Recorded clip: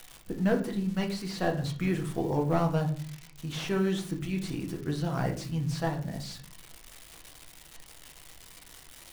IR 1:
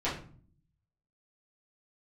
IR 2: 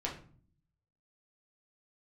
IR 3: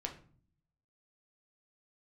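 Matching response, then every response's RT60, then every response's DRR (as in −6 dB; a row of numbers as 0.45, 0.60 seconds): 3; 0.45, 0.45, 0.45 seconds; −10.0, −3.0, 2.0 decibels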